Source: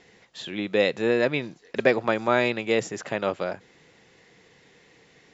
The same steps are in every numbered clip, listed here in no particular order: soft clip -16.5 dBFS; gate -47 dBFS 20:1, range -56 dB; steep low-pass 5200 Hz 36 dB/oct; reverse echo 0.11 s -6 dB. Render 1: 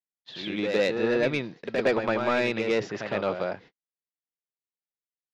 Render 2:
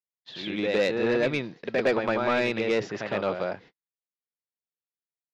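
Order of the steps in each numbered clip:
steep low-pass > soft clip > reverse echo > gate; reverse echo > gate > steep low-pass > soft clip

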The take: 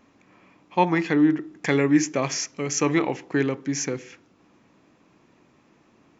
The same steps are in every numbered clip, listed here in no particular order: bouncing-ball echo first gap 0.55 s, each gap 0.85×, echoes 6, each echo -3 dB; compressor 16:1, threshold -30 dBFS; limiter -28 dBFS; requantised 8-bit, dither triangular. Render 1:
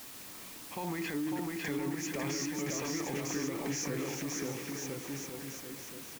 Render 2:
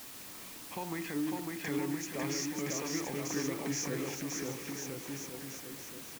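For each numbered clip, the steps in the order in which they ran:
limiter > bouncing-ball echo > requantised > compressor; compressor > limiter > bouncing-ball echo > requantised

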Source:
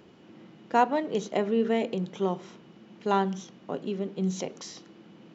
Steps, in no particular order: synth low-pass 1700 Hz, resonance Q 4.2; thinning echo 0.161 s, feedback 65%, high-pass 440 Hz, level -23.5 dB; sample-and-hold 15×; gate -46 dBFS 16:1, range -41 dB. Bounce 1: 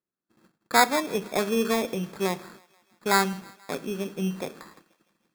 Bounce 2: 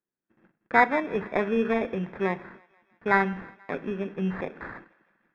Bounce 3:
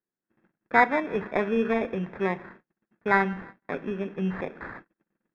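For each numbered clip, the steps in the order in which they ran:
synth low-pass > gate > sample-and-hold > thinning echo; sample-and-hold > synth low-pass > gate > thinning echo; thinning echo > gate > sample-and-hold > synth low-pass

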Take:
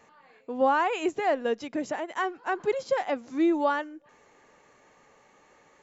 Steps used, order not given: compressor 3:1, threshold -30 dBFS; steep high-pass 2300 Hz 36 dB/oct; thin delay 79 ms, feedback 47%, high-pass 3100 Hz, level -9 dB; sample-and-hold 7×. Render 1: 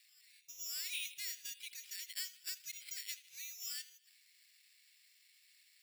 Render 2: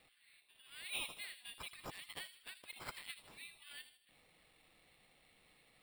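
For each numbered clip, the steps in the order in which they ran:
compressor > thin delay > sample-and-hold > steep high-pass; compressor > steep high-pass > sample-and-hold > thin delay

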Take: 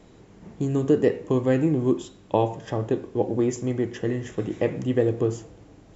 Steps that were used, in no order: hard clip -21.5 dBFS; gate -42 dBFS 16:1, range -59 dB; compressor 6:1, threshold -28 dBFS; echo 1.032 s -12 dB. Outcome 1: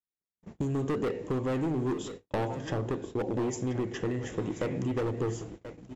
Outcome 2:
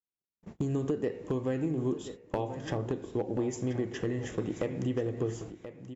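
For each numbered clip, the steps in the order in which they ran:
hard clip > compressor > echo > gate; gate > compressor > hard clip > echo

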